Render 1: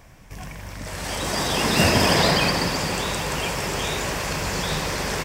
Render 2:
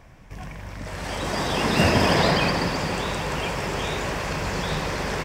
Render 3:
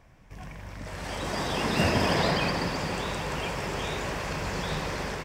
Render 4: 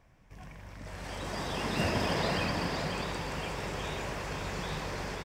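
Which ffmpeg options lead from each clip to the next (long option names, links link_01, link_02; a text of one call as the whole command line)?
ffmpeg -i in.wav -af "highshelf=frequency=5100:gain=-11.5" out.wav
ffmpeg -i in.wav -af "dynaudnorm=framelen=240:gausssize=3:maxgain=3dB,volume=-7.5dB" out.wav
ffmpeg -i in.wav -af "aecho=1:1:537:0.501,volume=-6dB" out.wav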